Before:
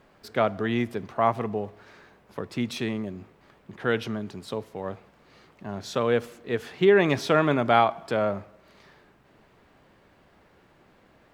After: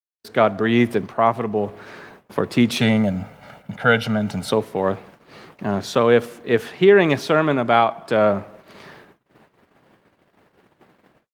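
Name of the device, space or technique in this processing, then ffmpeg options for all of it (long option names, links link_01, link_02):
video call: -filter_complex "[0:a]asplit=3[link_01][link_02][link_03];[link_01]afade=type=out:start_time=2.8:duration=0.02[link_04];[link_02]aecho=1:1:1.4:0.98,afade=type=in:start_time=2.8:duration=0.02,afade=type=out:start_time=4.5:duration=0.02[link_05];[link_03]afade=type=in:start_time=4.5:duration=0.02[link_06];[link_04][link_05][link_06]amix=inputs=3:normalize=0,highpass=110,dynaudnorm=framelen=140:gausssize=3:maxgain=15.5dB,agate=range=-49dB:threshold=-41dB:ratio=16:detection=peak,volume=-2dB" -ar 48000 -c:a libopus -b:a 32k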